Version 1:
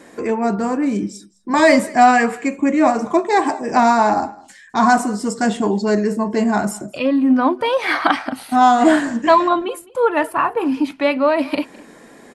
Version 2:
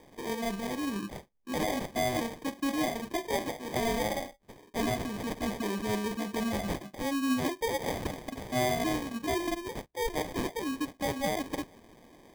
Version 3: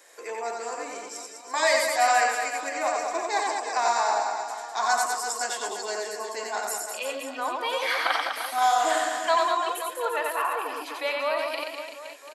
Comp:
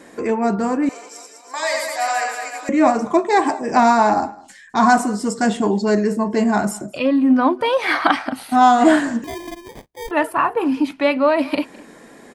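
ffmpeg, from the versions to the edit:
-filter_complex "[0:a]asplit=3[a][b][c];[a]atrim=end=0.892[d];[2:a]atrim=start=0.888:end=2.692[e];[b]atrim=start=2.688:end=9.242[f];[1:a]atrim=start=9.238:end=10.112[g];[c]atrim=start=10.108[h];[d][e]acrossfade=d=0.004:c1=hsin:c2=hsin[i];[i][f]acrossfade=d=0.004:c1=hsin:c2=hsin[j];[j][g]acrossfade=d=0.004:c1=hsin:c2=hsin[k];[k][h]acrossfade=d=0.004:c1=hsin:c2=hsin"

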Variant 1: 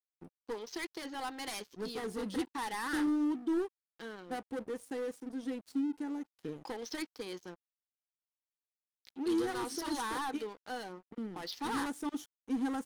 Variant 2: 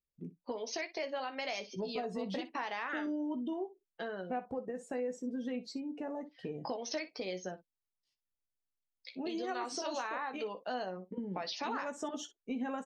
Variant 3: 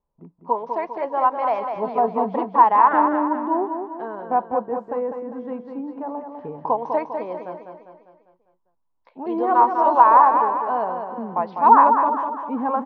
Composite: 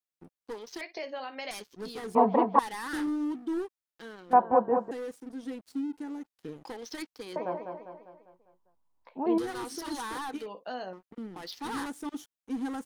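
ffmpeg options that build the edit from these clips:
-filter_complex "[1:a]asplit=2[a][b];[2:a]asplit=3[c][d][e];[0:a]asplit=6[f][g][h][i][j][k];[f]atrim=end=0.812[l];[a]atrim=start=0.808:end=1.512[m];[g]atrim=start=1.508:end=2.152[n];[c]atrim=start=2.148:end=2.592[o];[h]atrim=start=2.588:end=4.332[p];[d]atrim=start=4.328:end=4.912[q];[i]atrim=start=4.908:end=7.362[r];[e]atrim=start=7.358:end=9.382[s];[j]atrim=start=9.378:end=10.462[t];[b]atrim=start=10.458:end=10.932[u];[k]atrim=start=10.928[v];[l][m]acrossfade=d=0.004:c1=hsin:c2=hsin[w];[w][n]acrossfade=d=0.004:c1=hsin:c2=hsin[x];[x][o]acrossfade=d=0.004:c1=hsin:c2=hsin[y];[y][p]acrossfade=d=0.004:c1=hsin:c2=hsin[z];[z][q]acrossfade=d=0.004:c1=hsin:c2=hsin[aa];[aa][r]acrossfade=d=0.004:c1=hsin:c2=hsin[ab];[ab][s]acrossfade=d=0.004:c1=hsin:c2=hsin[ac];[ac][t]acrossfade=d=0.004:c1=hsin:c2=hsin[ad];[ad][u]acrossfade=d=0.004:c1=hsin:c2=hsin[ae];[ae][v]acrossfade=d=0.004:c1=hsin:c2=hsin"

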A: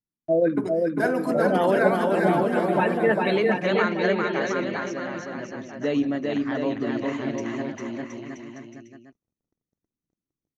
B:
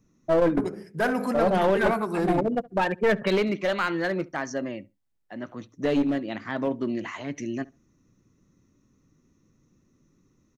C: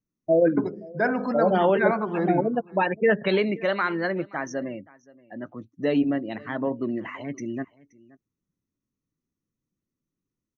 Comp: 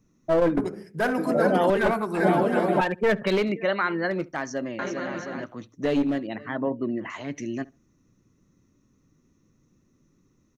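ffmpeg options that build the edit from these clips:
-filter_complex "[0:a]asplit=3[a][b][c];[2:a]asplit=2[d][e];[1:a]asplit=6[f][g][h][i][j][k];[f]atrim=end=1.182[l];[a]atrim=start=1.178:end=1.702[m];[g]atrim=start=1.698:end=2.202[n];[b]atrim=start=2.198:end=2.812[o];[h]atrim=start=2.808:end=3.522[p];[d]atrim=start=3.518:end=4.112[q];[i]atrim=start=4.108:end=4.792[r];[c]atrim=start=4.788:end=5.442[s];[j]atrim=start=5.438:end=6.272[t];[e]atrim=start=6.268:end=7.102[u];[k]atrim=start=7.098[v];[l][m]acrossfade=d=0.004:c1=hsin:c2=hsin[w];[w][n]acrossfade=d=0.004:c1=hsin:c2=hsin[x];[x][o]acrossfade=d=0.004:c1=hsin:c2=hsin[y];[y][p]acrossfade=d=0.004:c1=hsin:c2=hsin[z];[z][q]acrossfade=d=0.004:c1=hsin:c2=hsin[aa];[aa][r]acrossfade=d=0.004:c1=hsin:c2=hsin[ab];[ab][s]acrossfade=d=0.004:c1=hsin:c2=hsin[ac];[ac][t]acrossfade=d=0.004:c1=hsin:c2=hsin[ad];[ad][u]acrossfade=d=0.004:c1=hsin:c2=hsin[ae];[ae][v]acrossfade=d=0.004:c1=hsin:c2=hsin"

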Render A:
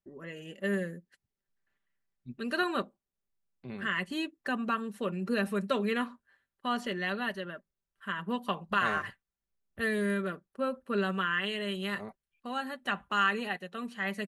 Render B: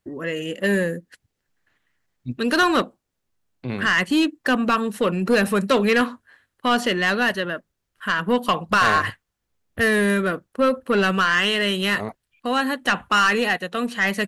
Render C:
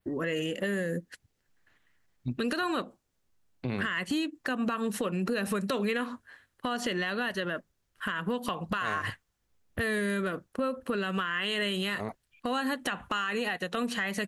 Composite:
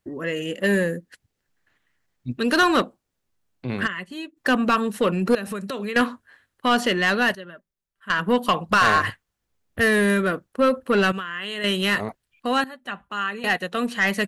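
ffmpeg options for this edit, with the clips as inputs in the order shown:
-filter_complex "[0:a]asplit=3[a][b][c];[2:a]asplit=2[d][e];[1:a]asplit=6[f][g][h][i][j][k];[f]atrim=end=3.88[l];[a]atrim=start=3.86:end=4.38[m];[g]atrim=start=4.36:end=5.352[n];[d]atrim=start=5.348:end=5.962[o];[h]atrim=start=5.958:end=7.352[p];[b]atrim=start=7.348:end=8.102[q];[i]atrim=start=8.098:end=11.122[r];[e]atrim=start=11.118:end=11.642[s];[j]atrim=start=11.638:end=12.642[t];[c]atrim=start=12.638:end=13.442[u];[k]atrim=start=13.438[v];[l][m]acrossfade=d=0.02:c1=tri:c2=tri[w];[w][n]acrossfade=d=0.02:c1=tri:c2=tri[x];[x][o]acrossfade=d=0.004:c1=hsin:c2=hsin[y];[y][p]acrossfade=d=0.004:c1=hsin:c2=hsin[z];[z][q]acrossfade=d=0.004:c1=hsin:c2=hsin[aa];[aa][r]acrossfade=d=0.004:c1=hsin:c2=hsin[ab];[ab][s]acrossfade=d=0.004:c1=hsin:c2=hsin[ac];[ac][t]acrossfade=d=0.004:c1=hsin:c2=hsin[ad];[ad][u]acrossfade=d=0.004:c1=hsin:c2=hsin[ae];[ae][v]acrossfade=d=0.004:c1=hsin:c2=hsin"

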